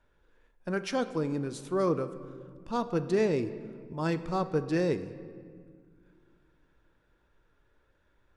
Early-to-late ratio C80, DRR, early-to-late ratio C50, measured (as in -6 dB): 14.0 dB, 11.0 dB, 13.0 dB